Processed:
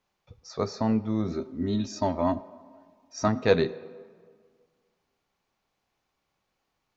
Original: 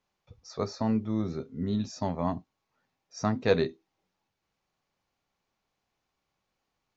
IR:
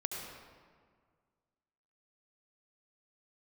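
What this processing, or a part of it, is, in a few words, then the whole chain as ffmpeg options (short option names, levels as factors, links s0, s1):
filtered reverb send: -filter_complex "[0:a]asettb=1/sr,asplit=3[s0][s1][s2];[s0]atrim=end=1.314[s3];[s1]atrim=start=1.31:end=3.28,asetpts=PTS-STARTPTS,afade=t=in:d=0.004:c=qsin,afade=t=out:st=1.966:d=0.004:c=qsin,aecho=1:1:3.2:0.71,atrim=end_sample=86877[s4];[s2]atrim=start=3.276[s5];[s3][s4]acrossfade=d=0.004:c1=hsin:c2=qsin[s6];[s6][s5]acrossfade=d=0.004:c1=qsin:c2=hsin,asplit=2[s7][s8];[s8]highpass=210,lowpass=4700[s9];[1:a]atrim=start_sample=2205[s10];[s9][s10]afir=irnorm=-1:irlink=0,volume=0.158[s11];[s7][s11]amix=inputs=2:normalize=0,volume=1.26"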